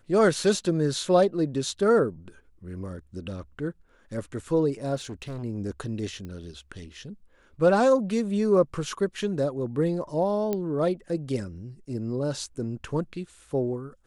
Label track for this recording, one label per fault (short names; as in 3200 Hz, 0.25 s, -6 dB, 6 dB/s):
4.950000	5.440000	clipped -31.5 dBFS
6.250000	6.250000	pop -27 dBFS
10.530000	10.530000	pop -15 dBFS